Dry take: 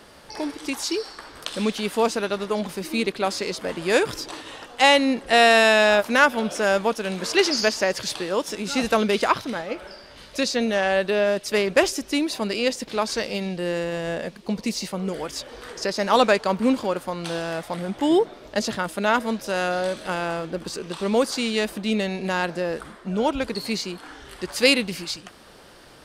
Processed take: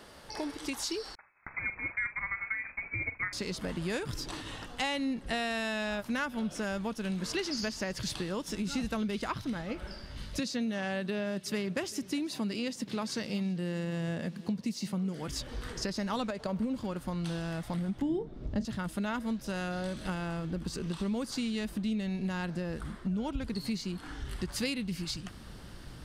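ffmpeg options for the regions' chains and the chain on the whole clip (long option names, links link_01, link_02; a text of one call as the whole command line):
ffmpeg -i in.wav -filter_complex "[0:a]asettb=1/sr,asplit=3[link_01][link_02][link_03];[link_01]atrim=end=1.154[link_04];[link_02]atrim=start=1.15:end=3.33,asetpts=PTS-STARTPTS,afade=type=in:duration=0.004:curve=qsin,afade=type=out:start_time=2.176:duration=0.004:curve=qsin,agate=range=-33dB:threshold=-31dB:ratio=3:release=100:detection=peak,asplit=2[link_05][link_06];[link_06]adelay=43,volume=-13dB[link_07];[link_05][link_07]amix=inputs=2:normalize=0,atrim=end_sample=96138,lowpass=frequency=2200:width_type=q:width=0.5098,lowpass=frequency=2200:width_type=q:width=0.6013,lowpass=frequency=2200:width_type=q:width=0.9,lowpass=frequency=2200:width_type=q:width=2.563,afreqshift=-2600[link_08];[link_03]atrim=start=3.326[link_09];[link_04][link_08]acrossfade=duration=0.004:curve1=hsin:curve2=qsin[link_10];[link_10][link_09]acrossfade=duration=0.004:curve1=qsin:curve2=hsin,asettb=1/sr,asplit=3[link_11][link_12][link_13];[link_11]atrim=end=10.394[link_14];[link_12]atrim=start=10.39:end=15.28,asetpts=PTS-STARTPTS,afade=type=in:duration=0.004:curve=qsin,afade=type=out:start_time=4.886:duration=0.004:curve=qsin,highpass=frequency=110:width=0.5412,highpass=frequency=110:width=1.3066,aecho=1:1:381:0.0668,atrim=end_sample=215649[link_15];[link_13]atrim=start=15.276[link_16];[link_14][link_15]acrossfade=duration=0.004:curve1=hsin:curve2=qsin[link_17];[link_17][link_16]acrossfade=duration=0.004:curve1=qsin:curve2=hsin,asettb=1/sr,asplit=3[link_18][link_19][link_20];[link_18]atrim=end=16.304[link_21];[link_19]atrim=start=16.3:end=16.76,asetpts=PTS-STARTPTS,afade=type=in:duration=0.004:curve=qsin,afade=type=out:start_time=0.456:duration=0.004:curve=qsin,highpass=41,equalizer=frequency=580:width_type=o:width=0.71:gain=9.5,acompressor=threshold=-16dB:ratio=6:attack=3.2:release=140:knee=1:detection=peak[link_22];[link_20]atrim=start=16.756[link_23];[link_21][link_22]acrossfade=duration=0.004:curve1=hsin:curve2=qsin[link_24];[link_24][link_23]acrossfade=duration=0.004:curve1=qsin:curve2=hsin,asettb=1/sr,asplit=3[link_25][link_26][link_27];[link_25]atrim=end=18.024[link_28];[link_26]atrim=start=18.02:end=18.65,asetpts=PTS-STARTPTS,afade=type=in:duration=0.004:curve=qsin,afade=type=out:start_time=0.626:duration=0.004:curve=qsin,lowpass=8700,tiltshelf=frequency=650:gain=8,asplit=2[link_29][link_30];[link_30]adelay=35,volume=-13dB[link_31];[link_29][link_31]amix=inputs=2:normalize=0,atrim=end_sample=27783[link_32];[link_27]atrim=start=18.646[link_33];[link_28][link_32]acrossfade=duration=0.004:curve1=hsin:curve2=qsin[link_34];[link_34][link_33]acrossfade=duration=0.004:curve1=qsin:curve2=hsin,bandreject=frequency=2400:width=29,asubboost=boost=6.5:cutoff=190,acompressor=threshold=-28dB:ratio=4,volume=-4dB" out.wav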